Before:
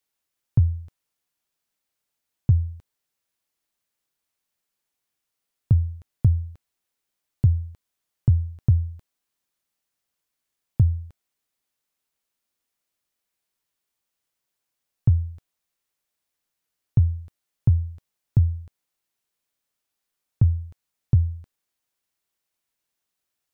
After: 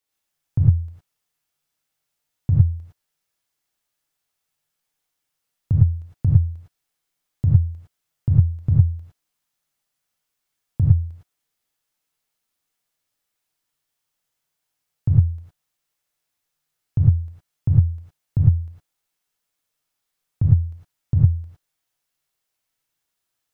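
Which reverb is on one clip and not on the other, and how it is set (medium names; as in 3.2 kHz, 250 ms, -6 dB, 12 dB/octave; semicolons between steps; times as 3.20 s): gated-style reverb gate 130 ms rising, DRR -4 dB; trim -2.5 dB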